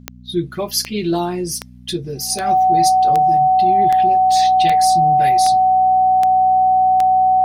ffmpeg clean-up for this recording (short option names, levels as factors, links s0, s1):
-af "adeclick=t=4,bandreject=f=61.4:t=h:w=4,bandreject=f=122.8:t=h:w=4,bandreject=f=184.2:t=h:w=4,bandreject=f=245.6:t=h:w=4,bandreject=f=750:w=30"